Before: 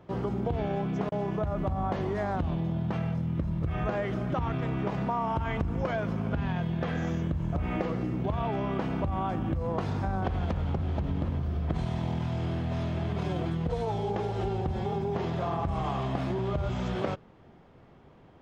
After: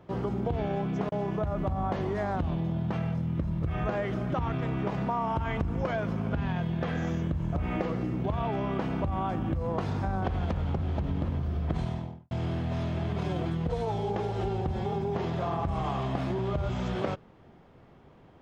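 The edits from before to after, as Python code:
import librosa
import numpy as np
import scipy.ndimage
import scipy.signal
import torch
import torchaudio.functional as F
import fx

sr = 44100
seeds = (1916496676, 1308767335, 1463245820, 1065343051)

y = fx.studio_fade_out(x, sr, start_s=11.79, length_s=0.52)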